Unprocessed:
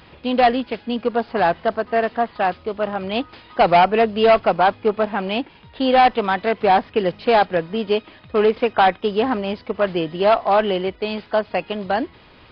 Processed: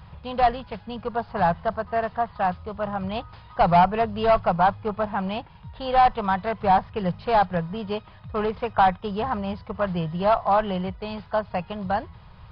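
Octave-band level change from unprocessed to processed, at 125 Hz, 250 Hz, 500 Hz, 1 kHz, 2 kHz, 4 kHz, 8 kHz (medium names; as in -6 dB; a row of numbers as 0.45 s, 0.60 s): +3.0 dB, -5.5 dB, -7.0 dB, -3.0 dB, -7.5 dB, -9.5 dB, no reading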